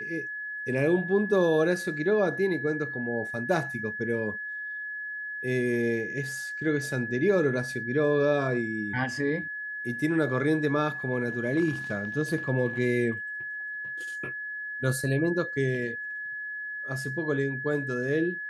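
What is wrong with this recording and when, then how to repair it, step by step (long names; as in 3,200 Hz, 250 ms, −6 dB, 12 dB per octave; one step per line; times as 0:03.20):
whistle 1,700 Hz −33 dBFS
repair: notch filter 1,700 Hz, Q 30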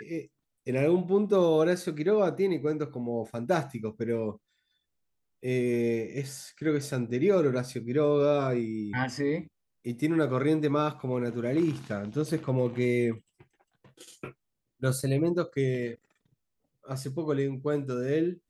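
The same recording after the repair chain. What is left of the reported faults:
none of them is left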